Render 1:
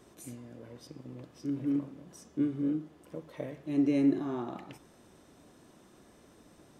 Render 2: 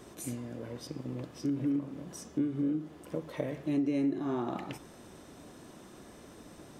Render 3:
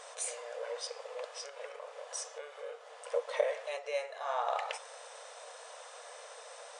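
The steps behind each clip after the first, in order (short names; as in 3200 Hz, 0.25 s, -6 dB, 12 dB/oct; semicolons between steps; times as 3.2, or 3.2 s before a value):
compressor 4:1, threshold -36 dBFS, peak gain reduction 13 dB; gain +7 dB
brick-wall FIR band-pass 450–10000 Hz; gain +7 dB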